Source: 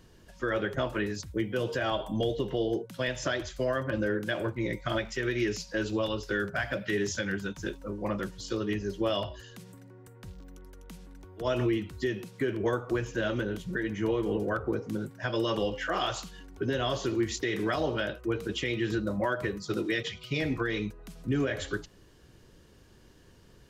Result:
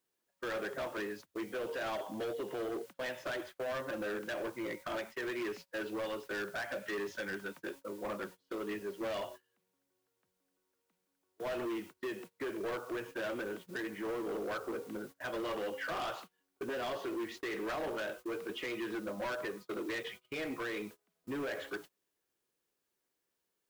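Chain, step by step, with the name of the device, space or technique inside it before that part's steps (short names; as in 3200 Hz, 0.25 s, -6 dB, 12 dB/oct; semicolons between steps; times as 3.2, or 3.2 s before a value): aircraft radio (BPF 360–2300 Hz; hard clip -32.5 dBFS, distortion -8 dB; white noise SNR 21 dB; gate -46 dBFS, range -25 dB); gain -2 dB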